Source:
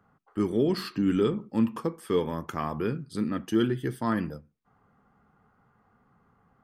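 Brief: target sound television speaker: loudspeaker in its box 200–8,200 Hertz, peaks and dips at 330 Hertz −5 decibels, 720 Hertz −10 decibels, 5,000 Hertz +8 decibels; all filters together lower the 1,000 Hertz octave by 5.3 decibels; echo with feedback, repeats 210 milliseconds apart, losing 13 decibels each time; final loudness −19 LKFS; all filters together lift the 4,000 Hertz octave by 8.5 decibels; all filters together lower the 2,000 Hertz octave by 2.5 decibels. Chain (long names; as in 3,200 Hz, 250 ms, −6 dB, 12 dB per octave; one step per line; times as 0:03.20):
loudspeaker in its box 200–8,200 Hz, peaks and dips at 330 Hz −5 dB, 720 Hz −10 dB, 5,000 Hz +8 dB
parametric band 1,000 Hz −4 dB
parametric band 2,000 Hz −3.5 dB
parametric band 4,000 Hz +8.5 dB
repeating echo 210 ms, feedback 22%, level −13 dB
level +11.5 dB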